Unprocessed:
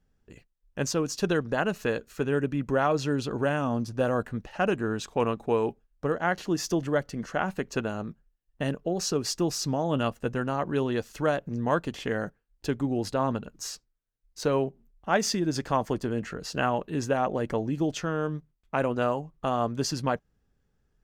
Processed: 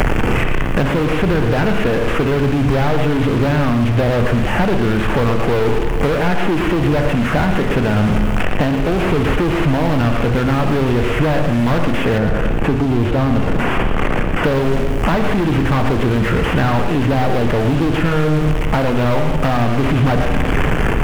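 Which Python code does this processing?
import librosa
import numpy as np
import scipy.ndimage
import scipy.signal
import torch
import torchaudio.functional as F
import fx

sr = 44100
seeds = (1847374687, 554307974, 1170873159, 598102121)

y = fx.delta_mod(x, sr, bps=16000, step_db=-35.0)
y = fx.rev_schroeder(y, sr, rt60_s=0.84, comb_ms=26, drr_db=9.5)
y = fx.quant_dither(y, sr, seeds[0], bits=12, dither='none')
y = fx.leveller(y, sr, passes=5)
y = fx.low_shelf(y, sr, hz=84.0, db=8.0)
y = fx.rider(y, sr, range_db=10, speed_s=0.5)
y = fx.high_shelf(y, sr, hz=2000.0, db=-11.5, at=(12.18, 14.44))
y = y + 10.0 ** (-10.0 / 20.0) * np.pad(y, (int(115 * sr / 1000.0), 0))[:len(y)]
y = fx.band_squash(y, sr, depth_pct=100)
y = F.gain(torch.from_numpy(y), -1.0).numpy()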